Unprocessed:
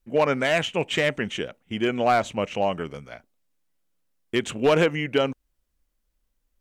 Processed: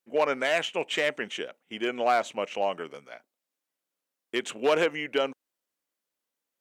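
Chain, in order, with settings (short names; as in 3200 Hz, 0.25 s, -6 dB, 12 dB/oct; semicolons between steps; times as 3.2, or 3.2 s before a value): HPF 350 Hz 12 dB/oct; gain -3 dB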